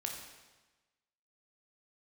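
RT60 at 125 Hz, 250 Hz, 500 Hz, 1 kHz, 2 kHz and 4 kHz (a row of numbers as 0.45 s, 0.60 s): 1.2 s, 1.2 s, 1.2 s, 1.2 s, 1.2 s, 1.1 s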